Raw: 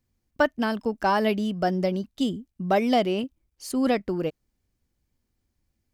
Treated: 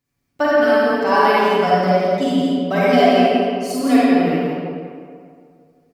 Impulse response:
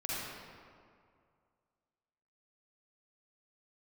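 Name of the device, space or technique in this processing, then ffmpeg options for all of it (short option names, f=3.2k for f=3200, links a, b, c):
PA in a hall: -filter_complex "[0:a]highpass=f=170:p=1,equalizer=f=2k:t=o:w=0.55:g=3,aecho=1:1:7:0.71,aecho=1:1:170:0.562[a];[1:a]atrim=start_sample=2205[b];[a][b]afir=irnorm=-1:irlink=0,volume=2.5dB"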